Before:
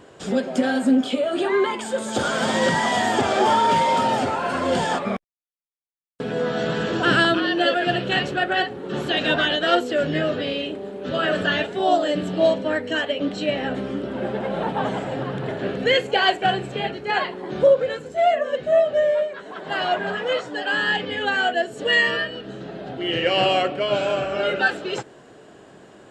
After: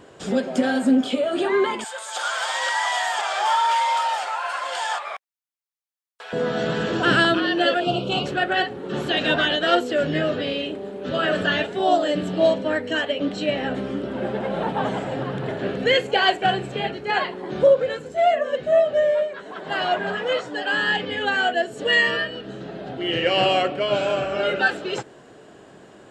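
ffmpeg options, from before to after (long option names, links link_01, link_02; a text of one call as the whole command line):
ffmpeg -i in.wav -filter_complex "[0:a]asettb=1/sr,asplit=3[link_01][link_02][link_03];[link_01]atrim=end=1.844[link_04];[link_02]atrim=start=1.84:end=6.33,asetpts=PTS-STARTPTS,afade=type=in:duration=0.004:curve=qsin,afade=type=out:start_time=4.486:duration=0.004:curve=qsin,highpass=frequency=780:width=0.5412,highpass=frequency=780:width=1.3066[link_05];[link_03]atrim=start=6.326[link_06];[link_04][link_05]acrossfade=duration=0.004:curve1=hsin:curve2=qsin[link_07];[link_07][link_06]acrossfade=duration=0.004:curve1=qsin:curve2=hsin,asettb=1/sr,asplit=3[link_08][link_09][link_10];[link_08]atrim=end=7.804[link_11];[link_09]atrim=start=7.8:end=8.26,asetpts=PTS-STARTPTS,afade=type=in:duration=0.004:curve=qsin,afade=type=out:start_time=0.456:duration=0.004:curve=qsin,asuperstop=centerf=1800:order=4:qfactor=1.4[link_12];[link_10]atrim=start=8.256[link_13];[link_11][link_12]acrossfade=duration=0.004:curve1=hsin:curve2=qsin[link_14];[link_14][link_13]acrossfade=duration=0.004:curve1=qsin:curve2=hsin" out.wav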